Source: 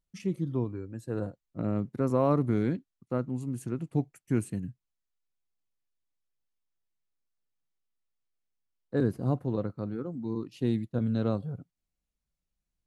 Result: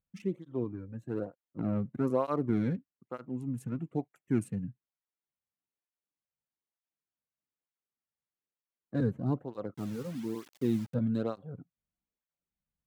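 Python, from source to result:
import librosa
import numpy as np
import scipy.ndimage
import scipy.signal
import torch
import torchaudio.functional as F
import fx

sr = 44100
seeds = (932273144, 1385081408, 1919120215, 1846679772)

y = fx.wiener(x, sr, points=9)
y = fx.quant_dither(y, sr, seeds[0], bits=8, dither='none', at=(9.74, 10.94))
y = fx.flanger_cancel(y, sr, hz=1.1, depth_ms=3.2)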